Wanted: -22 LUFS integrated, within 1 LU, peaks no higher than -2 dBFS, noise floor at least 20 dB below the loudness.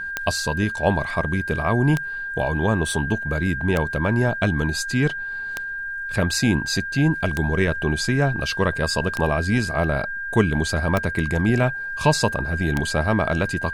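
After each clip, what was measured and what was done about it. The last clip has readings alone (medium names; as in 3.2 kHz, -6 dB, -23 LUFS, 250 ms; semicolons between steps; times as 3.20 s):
clicks found 8; steady tone 1.6 kHz; tone level -27 dBFS; loudness -22.0 LUFS; peak level -3.5 dBFS; loudness target -22.0 LUFS
-> de-click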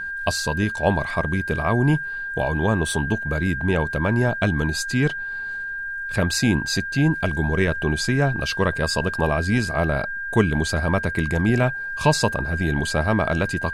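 clicks found 0; steady tone 1.6 kHz; tone level -27 dBFS
-> band-stop 1.6 kHz, Q 30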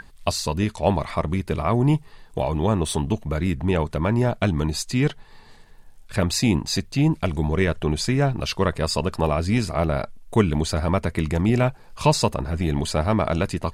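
steady tone not found; loudness -23.0 LUFS; peak level -4.0 dBFS; loudness target -22.0 LUFS
-> trim +1 dB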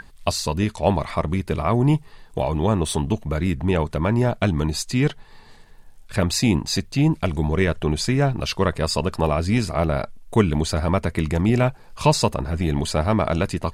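loudness -22.0 LUFS; peak level -3.0 dBFS; noise floor -47 dBFS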